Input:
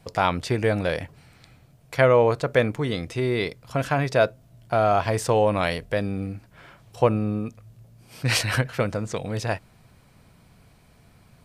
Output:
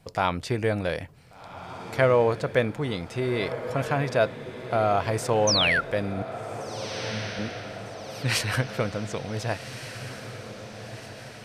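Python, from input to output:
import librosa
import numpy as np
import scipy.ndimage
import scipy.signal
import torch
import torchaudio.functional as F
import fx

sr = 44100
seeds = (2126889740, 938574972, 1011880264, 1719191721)

y = fx.spec_paint(x, sr, seeds[0], shape='fall', start_s=5.47, length_s=0.34, low_hz=1300.0, high_hz=6500.0, level_db=-20.0)
y = fx.octave_resonator(y, sr, note='A', decay_s=0.7, at=(6.22, 7.39))
y = fx.echo_diffused(y, sr, ms=1538, feedback_pct=57, wet_db=-11.0)
y = y * 10.0 ** (-3.0 / 20.0)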